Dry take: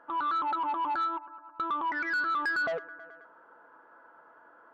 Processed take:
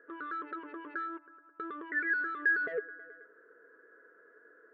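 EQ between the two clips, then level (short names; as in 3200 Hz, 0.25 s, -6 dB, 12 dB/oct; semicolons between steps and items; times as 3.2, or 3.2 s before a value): double band-pass 860 Hz, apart 2 oct; tilt -2.5 dB/oct; +7.0 dB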